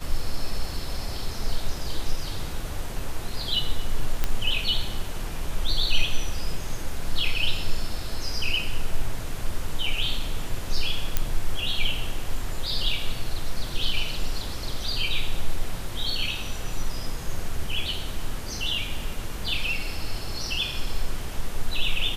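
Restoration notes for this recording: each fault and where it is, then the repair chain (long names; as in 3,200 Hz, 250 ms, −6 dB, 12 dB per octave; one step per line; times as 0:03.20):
0:04.24: click −9 dBFS
0:11.17: click −7 dBFS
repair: click removal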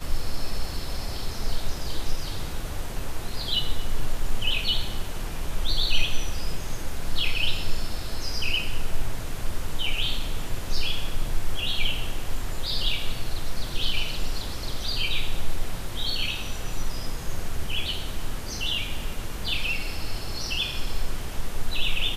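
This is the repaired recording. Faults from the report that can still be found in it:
none of them is left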